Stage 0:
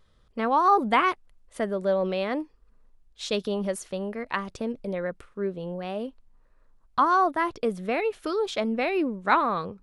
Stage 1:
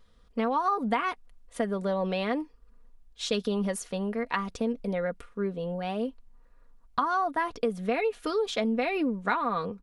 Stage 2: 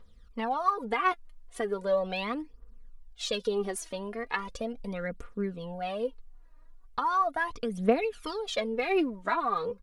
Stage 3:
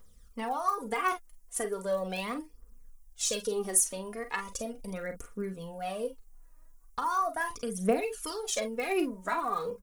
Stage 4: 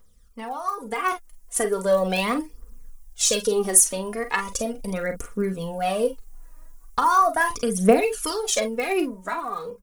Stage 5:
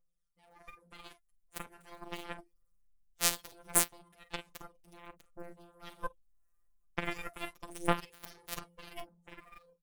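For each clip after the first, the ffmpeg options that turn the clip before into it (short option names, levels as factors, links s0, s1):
-af "aecho=1:1:4.2:0.54,acompressor=threshold=0.0708:ratio=10"
-af "equalizer=f=180:t=o:w=0.77:g=-2,aphaser=in_gain=1:out_gain=1:delay=3.3:decay=0.68:speed=0.38:type=triangular,volume=0.668"
-filter_complex "[0:a]aexciter=amount=5.1:drive=7.7:freq=5700,asplit=2[s0][s1];[s1]aecho=0:1:37|48:0.266|0.282[s2];[s0][s2]amix=inputs=2:normalize=0,volume=0.708"
-af "dynaudnorm=f=410:g=7:m=4.22"
-filter_complex "[0:a]afftfilt=real='hypot(re,im)*cos(PI*b)':imag='0':win_size=1024:overlap=0.75,acrossover=split=1100[s0][s1];[s0]aeval=exprs='val(0)*(1-0.5/2+0.5/2*cos(2*PI*1.3*n/s))':c=same[s2];[s1]aeval=exprs='val(0)*(1-0.5/2-0.5/2*cos(2*PI*1.3*n/s))':c=same[s3];[s2][s3]amix=inputs=2:normalize=0,aeval=exprs='0.75*(cos(1*acos(clip(val(0)/0.75,-1,1)))-cos(1*PI/2))+0.299*(cos(2*acos(clip(val(0)/0.75,-1,1)))-cos(2*PI/2))+0.0531*(cos(4*acos(clip(val(0)/0.75,-1,1)))-cos(4*PI/2))+0.075*(cos(6*acos(clip(val(0)/0.75,-1,1)))-cos(6*PI/2))+0.119*(cos(7*acos(clip(val(0)/0.75,-1,1)))-cos(7*PI/2))':c=same,volume=0.841"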